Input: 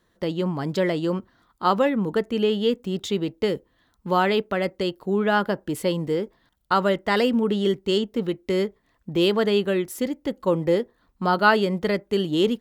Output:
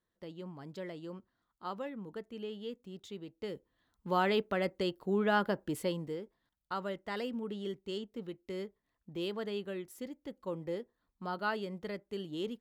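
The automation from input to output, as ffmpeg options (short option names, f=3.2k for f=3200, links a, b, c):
-af "volume=-8dB,afade=t=in:st=3.32:d=1.05:silence=0.251189,afade=t=out:st=5.68:d=0.53:silence=0.354813"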